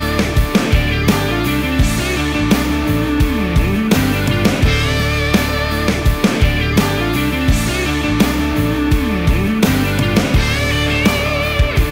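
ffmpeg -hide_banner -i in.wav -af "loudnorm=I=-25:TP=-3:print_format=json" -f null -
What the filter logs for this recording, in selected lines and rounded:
"input_i" : "-15.2",
"input_tp" : "-3.0",
"input_lra" : "0.5",
"input_thresh" : "-25.2",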